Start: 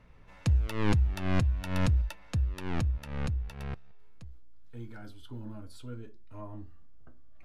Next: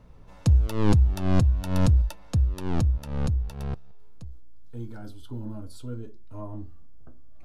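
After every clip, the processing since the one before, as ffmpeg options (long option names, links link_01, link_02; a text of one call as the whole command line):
ffmpeg -i in.wav -af "equalizer=frequency=2100:width_type=o:width=1.3:gain=-11.5,volume=6.5dB" out.wav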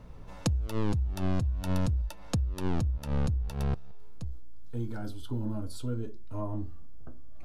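ffmpeg -i in.wav -af "acompressor=threshold=-29dB:ratio=12,volume=3.5dB" out.wav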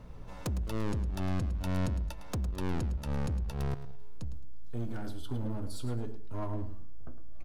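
ffmpeg -i in.wav -af "volume=30dB,asoftclip=hard,volume=-30dB,aecho=1:1:108|216|324:0.251|0.0678|0.0183" out.wav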